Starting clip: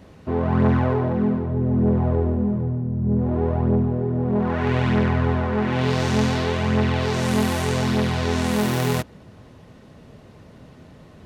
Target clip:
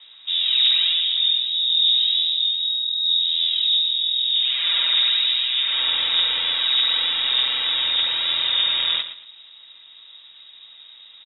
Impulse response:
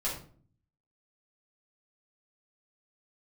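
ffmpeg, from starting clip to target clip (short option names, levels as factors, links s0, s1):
-af "aecho=1:1:115|230|345:0.266|0.0718|0.0194,lowpass=f=3300:t=q:w=0.5098,lowpass=f=3300:t=q:w=0.6013,lowpass=f=3300:t=q:w=0.9,lowpass=f=3300:t=q:w=2.563,afreqshift=-3900"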